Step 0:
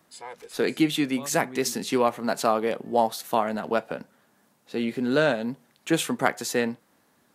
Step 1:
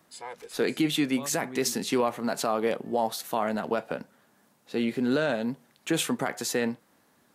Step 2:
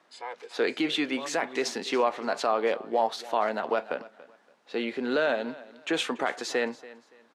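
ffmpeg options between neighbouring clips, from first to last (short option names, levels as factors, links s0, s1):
-af "alimiter=limit=0.168:level=0:latency=1:release=30"
-af "highpass=390,lowpass=4300,aecho=1:1:284|568:0.112|0.0303,volume=1.33"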